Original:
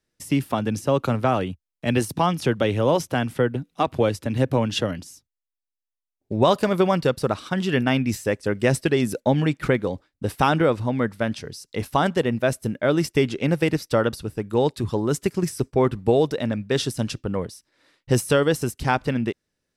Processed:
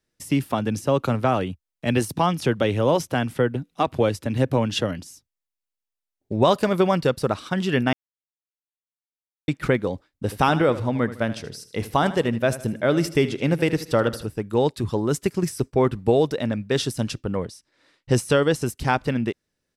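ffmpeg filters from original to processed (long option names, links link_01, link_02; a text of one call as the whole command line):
ffmpeg -i in.wav -filter_complex "[0:a]asplit=3[link_01][link_02][link_03];[link_01]afade=type=out:start_time=10.27:duration=0.02[link_04];[link_02]aecho=1:1:78|156|234|312:0.188|0.0753|0.0301|0.0121,afade=type=in:start_time=10.27:duration=0.02,afade=type=out:start_time=14.25:duration=0.02[link_05];[link_03]afade=type=in:start_time=14.25:duration=0.02[link_06];[link_04][link_05][link_06]amix=inputs=3:normalize=0,asettb=1/sr,asplit=3[link_07][link_08][link_09];[link_07]atrim=end=17.374[link_10];[link_08]atrim=start=17.37:end=18.66,asetpts=PTS-STARTPTS,afade=type=in:duration=0.004:curve=qsin,afade=type=out:start_time=1.286:duration=0.004:curve=qsin,lowpass=9700[link_11];[link_09]atrim=start=18.656[link_12];[link_10][link_11]acrossfade=duration=0.004:curve1=hsin:curve2=qsin[link_13];[link_13][link_12]acrossfade=duration=0.004:curve1=qsin:curve2=hsin,asplit=3[link_14][link_15][link_16];[link_14]atrim=end=7.93,asetpts=PTS-STARTPTS,afade=type=out:start_time=7.926:duration=0.004:curve=hsin[link_17];[link_15]atrim=start=7.93:end=9.48,asetpts=PTS-STARTPTS,volume=0[link_18];[link_16]atrim=start=9.48,asetpts=PTS-STARTPTS,afade=type=in:duration=0.004:curve=hsin[link_19];[link_17][link_18][link_19]concat=n=3:v=0:a=1" out.wav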